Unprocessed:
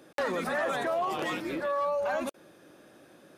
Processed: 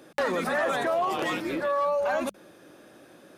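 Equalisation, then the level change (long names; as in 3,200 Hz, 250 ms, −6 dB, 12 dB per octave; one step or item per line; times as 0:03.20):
mains-hum notches 50/100/150/200 Hz
+3.5 dB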